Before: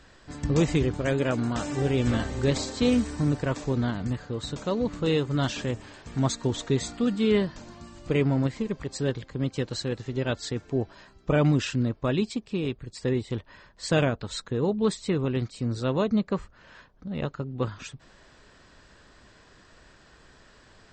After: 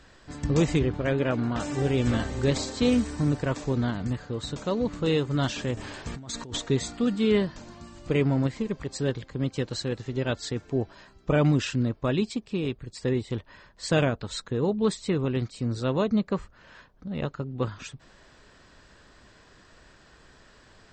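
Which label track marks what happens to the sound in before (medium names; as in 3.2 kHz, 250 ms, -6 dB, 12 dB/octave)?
0.790000	1.600000	low-pass 3.8 kHz
5.770000	6.600000	compressor with a negative ratio -36 dBFS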